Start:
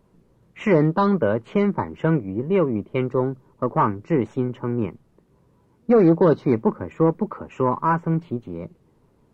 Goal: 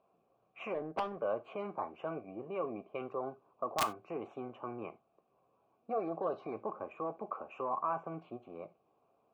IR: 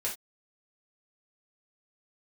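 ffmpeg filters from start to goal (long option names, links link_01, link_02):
-filter_complex "[0:a]alimiter=limit=-17dB:level=0:latency=1:release=15,asplit=3[link_01][link_02][link_03];[link_01]bandpass=frequency=730:width_type=q:width=8,volume=0dB[link_04];[link_02]bandpass=frequency=1090:width_type=q:width=8,volume=-6dB[link_05];[link_03]bandpass=frequency=2440:width_type=q:width=8,volume=-9dB[link_06];[link_04][link_05][link_06]amix=inputs=3:normalize=0,aeval=exprs='(mod(20*val(0)+1,2)-1)/20':channel_layout=same,asettb=1/sr,asplit=3[link_07][link_08][link_09];[link_07]atrim=end=0.744[link_10];[link_08]atrim=start=0.74:end=1.17,asetpts=PTS-STARTPTS,afade=type=in:duration=0.004:curve=qsin,afade=type=out:start_time=0.426:duration=0.004:curve=qsin,adynamicsmooth=sensitivity=2.5:basefreq=560[link_11];[link_09]atrim=start=1.166[link_12];[link_10][link_11]acrossfade=duration=0.004:curve1=hsin:curve2=qsin[link_13];[link_13][link_12]acrossfade=duration=0.004:curve1=qsin:curve2=hsin,asplit=2[link_14][link_15];[1:a]atrim=start_sample=2205[link_16];[link_15][link_16]afir=irnorm=-1:irlink=0,volume=-12.5dB[link_17];[link_14][link_17]amix=inputs=2:normalize=0,volume=2dB"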